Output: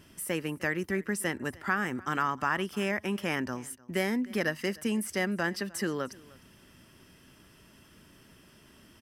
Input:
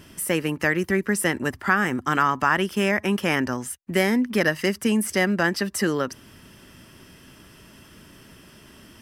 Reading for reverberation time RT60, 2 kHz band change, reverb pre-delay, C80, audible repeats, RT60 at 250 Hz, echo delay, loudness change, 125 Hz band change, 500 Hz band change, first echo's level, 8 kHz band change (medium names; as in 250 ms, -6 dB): no reverb, -8.5 dB, no reverb, no reverb, 1, no reverb, 304 ms, -8.5 dB, -8.5 dB, -8.5 dB, -23.0 dB, -8.5 dB